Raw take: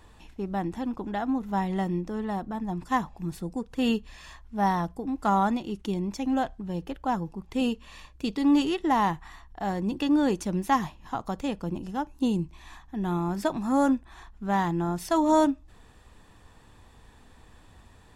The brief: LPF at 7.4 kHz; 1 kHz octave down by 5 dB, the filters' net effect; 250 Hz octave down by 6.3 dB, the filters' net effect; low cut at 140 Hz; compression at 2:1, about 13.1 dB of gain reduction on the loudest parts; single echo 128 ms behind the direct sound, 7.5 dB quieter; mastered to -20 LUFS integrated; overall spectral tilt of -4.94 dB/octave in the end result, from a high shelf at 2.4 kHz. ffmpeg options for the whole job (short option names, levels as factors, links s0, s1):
-af "highpass=140,lowpass=7400,equalizer=f=250:t=o:g=-7,equalizer=f=1000:t=o:g=-6.5,highshelf=f=2400:g=4.5,acompressor=threshold=0.00447:ratio=2,aecho=1:1:128:0.422,volume=13.3"